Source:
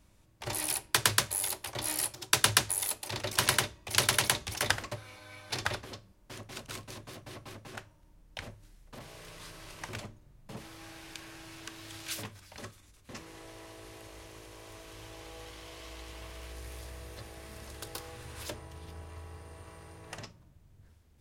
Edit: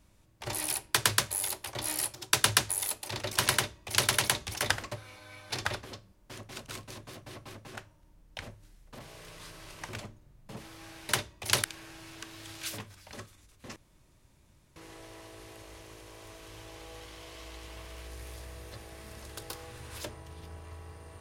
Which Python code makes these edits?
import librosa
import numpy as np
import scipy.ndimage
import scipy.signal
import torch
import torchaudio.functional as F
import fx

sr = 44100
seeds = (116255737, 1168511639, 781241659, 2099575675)

y = fx.edit(x, sr, fx.duplicate(start_s=3.54, length_s=0.55, to_s=11.09),
    fx.insert_room_tone(at_s=13.21, length_s=1.0), tone=tone)